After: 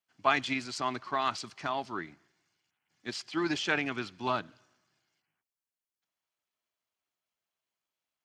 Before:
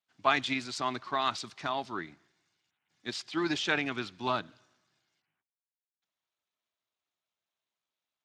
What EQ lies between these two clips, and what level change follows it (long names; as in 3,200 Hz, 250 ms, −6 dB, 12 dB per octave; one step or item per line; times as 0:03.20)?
notch filter 3,700 Hz, Q 8.8
0.0 dB